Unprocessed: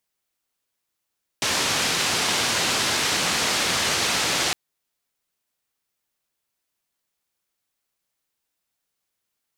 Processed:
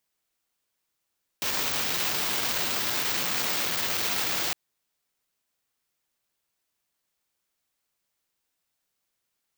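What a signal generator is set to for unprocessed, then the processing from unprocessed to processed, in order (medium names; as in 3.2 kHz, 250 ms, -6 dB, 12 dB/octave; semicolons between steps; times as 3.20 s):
noise band 85–5800 Hz, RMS -23 dBFS 3.11 s
peak limiter -19 dBFS; careless resampling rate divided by 2×, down filtered, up zero stuff; transformer saturation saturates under 3.1 kHz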